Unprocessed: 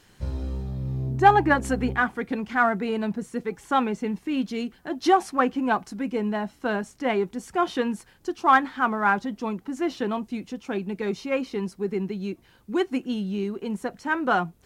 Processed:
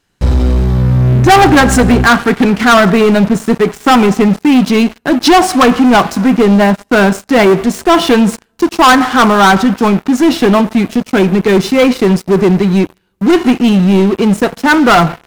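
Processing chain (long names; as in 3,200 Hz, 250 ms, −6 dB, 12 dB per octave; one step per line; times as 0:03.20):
coupled-rooms reverb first 0.69 s, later 2.9 s, from −17 dB, DRR 16 dB
wrong playback speed 25 fps video run at 24 fps
leveller curve on the samples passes 5
level +3.5 dB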